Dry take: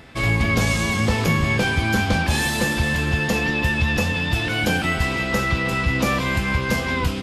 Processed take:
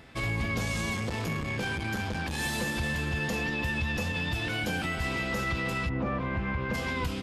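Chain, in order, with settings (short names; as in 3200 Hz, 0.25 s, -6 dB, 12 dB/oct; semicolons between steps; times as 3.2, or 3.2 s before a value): 5.88–6.73 LPF 1100 Hz -> 2200 Hz 12 dB/oct; limiter -15 dBFS, peak gain reduction 5.5 dB; 0.95–2.39 core saturation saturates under 230 Hz; gain -7 dB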